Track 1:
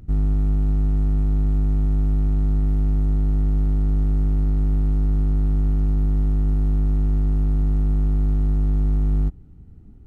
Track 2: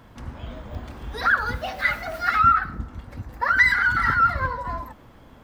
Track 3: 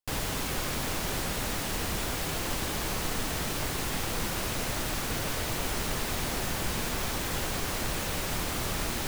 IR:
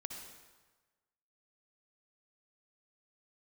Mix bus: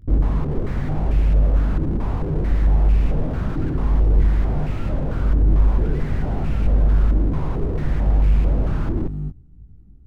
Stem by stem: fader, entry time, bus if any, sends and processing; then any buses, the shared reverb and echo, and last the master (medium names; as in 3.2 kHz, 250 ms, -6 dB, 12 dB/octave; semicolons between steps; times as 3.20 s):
-7.0 dB, 0.00 s, no send, detune thickener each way 25 cents
-18.0 dB, 2.35 s, no send, none
+2.5 dB, 0.00 s, send -16 dB, de-hum 58.08 Hz, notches 29; step-sequenced low-pass 4.5 Hz 320–2600 Hz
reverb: on, RT60 1.3 s, pre-delay 53 ms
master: bass shelf 260 Hz +10.5 dB; slew-rate limiter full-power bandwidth 19 Hz